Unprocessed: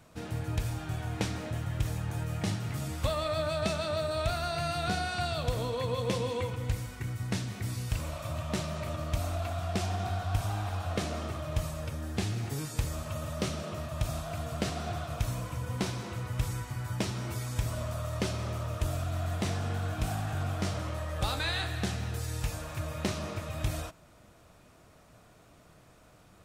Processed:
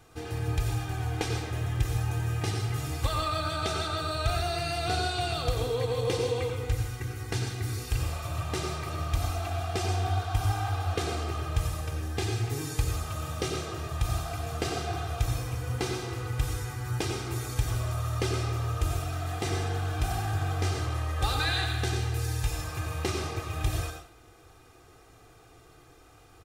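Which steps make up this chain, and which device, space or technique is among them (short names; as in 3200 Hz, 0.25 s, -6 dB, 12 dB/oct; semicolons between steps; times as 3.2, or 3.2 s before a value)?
microphone above a desk (comb 2.5 ms, depth 79%; reverb RT60 0.40 s, pre-delay 84 ms, DRR 4 dB)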